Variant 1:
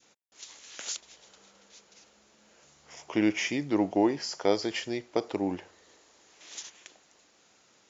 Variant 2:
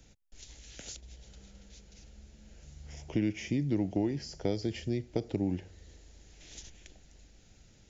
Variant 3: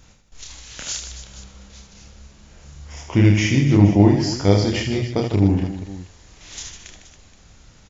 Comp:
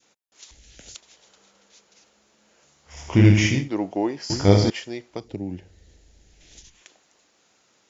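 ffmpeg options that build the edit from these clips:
ffmpeg -i take0.wav -i take1.wav -i take2.wav -filter_complex "[1:a]asplit=2[link_01][link_02];[2:a]asplit=2[link_03][link_04];[0:a]asplit=5[link_05][link_06][link_07][link_08][link_09];[link_05]atrim=end=0.512[link_10];[link_01]atrim=start=0.508:end=0.952[link_11];[link_06]atrim=start=0.948:end=3.09[link_12];[link_03]atrim=start=2.85:end=3.7[link_13];[link_07]atrim=start=3.46:end=4.302[link_14];[link_04]atrim=start=4.298:end=4.702[link_15];[link_08]atrim=start=4.698:end=5.32[link_16];[link_02]atrim=start=5.08:end=6.84[link_17];[link_09]atrim=start=6.6[link_18];[link_10][link_11]acrossfade=duration=0.004:curve1=hsin:curve2=hsin[link_19];[link_19][link_12]acrossfade=duration=0.004:curve1=hsin:curve2=hsin[link_20];[link_20][link_13]acrossfade=duration=0.24:curve1=tri:curve2=tri[link_21];[link_21][link_14]acrossfade=duration=0.24:curve1=tri:curve2=tri[link_22];[link_22][link_15]acrossfade=duration=0.004:curve1=hsin:curve2=hsin[link_23];[link_23][link_16]acrossfade=duration=0.004:curve1=hsin:curve2=hsin[link_24];[link_24][link_17]acrossfade=duration=0.24:curve1=tri:curve2=tri[link_25];[link_25][link_18]acrossfade=duration=0.24:curve1=tri:curve2=tri" out.wav

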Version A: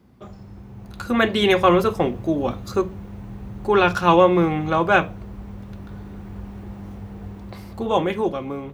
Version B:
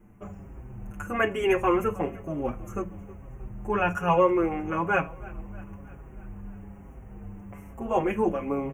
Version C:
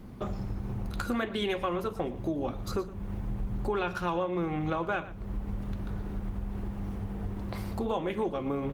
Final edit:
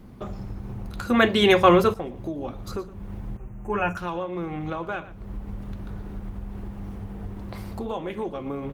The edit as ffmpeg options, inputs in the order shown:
ffmpeg -i take0.wav -i take1.wav -i take2.wav -filter_complex "[2:a]asplit=3[link_01][link_02][link_03];[link_01]atrim=end=1.022[link_04];[0:a]atrim=start=1.018:end=1.942[link_05];[link_02]atrim=start=1.938:end=3.372[link_06];[1:a]atrim=start=3.368:end=3.972[link_07];[link_03]atrim=start=3.968[link_08];[link_04][link_05]acrossfade=duration=0.004:curve1=hsin:curve2=hsin[link_09];[link_09][link_06]acrossfade=duration=0.004:curve1=hsin:curve2=hsin[link_10];[link_10][link_07]acrossfade=duration=0.004:curve1=hsin:curve2=hsin[link_11];[link_11][link_08]acrossfade=duration=0.004:curve1=hsin:curve2=hsin" out.wav

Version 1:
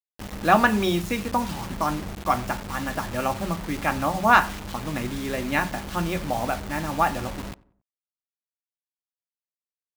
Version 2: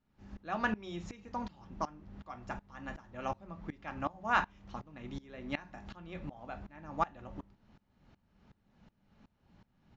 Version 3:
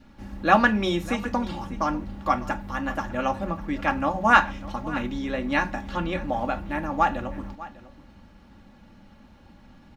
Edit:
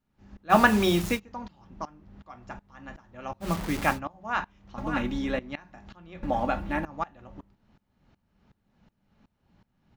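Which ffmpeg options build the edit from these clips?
ffmpeg -i take0.wav -i take1.wav -i take2.wav -filter_complex "[0:a]asplit=2[link_01][link_02];[2:a]asplit=2[link_03][link_04];[1:a]asplit=5[link_05][link_06][link_07][link_08][link_09];[link_05]atrim=end=0.55[link_10];[link_01]atrim=start=0.49:end=1.2[link_11];[link_06]atrim=start=1.14:end=3.5[link_12];[link_02]atrim=start=3.4:end=4[link_13];[link_07]atrim=start=3.9:end=4.782[link_14];[link_03]atrim=start=4.778:end=5.392[link_15];[link_08]atrim=start=5.388:end=6.232[link_16];[link_04]atrim=start=6.228:end=6.852[link_17];[link_09]atrim=start=6.848[link_18];[link_10][link_11]acrossfade=duration=0.06:curve1=tri:curve2=tri[link_19];[link_19][link_12]acrossfade=duration=0.06:curve1=tri:curve2=tri[link_20];[link_20][link_13]acrossfade=duration=0.1:curve1=tri:curve2=tri[link_21];[link_21][link_14]acrossfade=duration=0.1:curve1=tri:curve2=tri[link_22];[link_22][link_15]acrossfade=duration=0.004:curve1=hsin:curve2=hsin[link_23];[link_23][link_16]acrossfade=duration=0.004:curve1=hsin:curve2=hsin[link_24];[link_24][link_17]acrossfade=duration=0.004:curve1=hsin:curve2=hsin[link_25];[link_25][link_18]acrossfade=duration=0.004:curve1=hsin:curve2=hsin" out.wav

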